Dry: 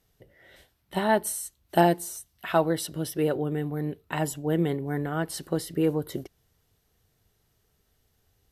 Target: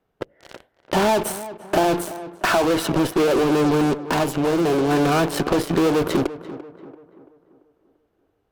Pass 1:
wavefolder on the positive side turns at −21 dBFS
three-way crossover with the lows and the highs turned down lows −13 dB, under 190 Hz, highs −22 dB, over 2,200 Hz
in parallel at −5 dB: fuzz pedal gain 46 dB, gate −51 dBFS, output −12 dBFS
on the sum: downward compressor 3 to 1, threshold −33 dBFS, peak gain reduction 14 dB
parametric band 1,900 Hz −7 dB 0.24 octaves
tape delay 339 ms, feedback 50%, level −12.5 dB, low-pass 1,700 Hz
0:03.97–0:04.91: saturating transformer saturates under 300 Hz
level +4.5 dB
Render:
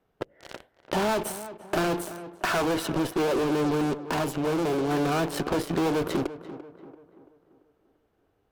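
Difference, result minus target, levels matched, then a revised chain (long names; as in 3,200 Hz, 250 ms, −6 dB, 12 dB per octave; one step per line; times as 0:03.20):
wavefolder on the positive side: distortion +18 dB; downward compressor: peak gain reduction +5.5 dB
wavefolder on the positive side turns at −12 dBFS
three-way crossover with the lows and the highs turned down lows −13 dB, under 190 Hz, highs −22 dB, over 2,200 Hz
in parallel at −5 dB: fuzz pedal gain 46 dB, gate −51 dBFS, output −12 dBFS
on the sum: downward compressor 3 to 1, threshold −22.5 dBFS, peak gain reduction 8.5 dB
parametric band 1,900 Hz −7 dB 0.24 octaves
tape delay 339 ms, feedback 50%, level −12.5 dB, low-pass 1,700 Hz
0:03.97–0:04.91: saturating transformer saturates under 300 Hz
level +4.5 dB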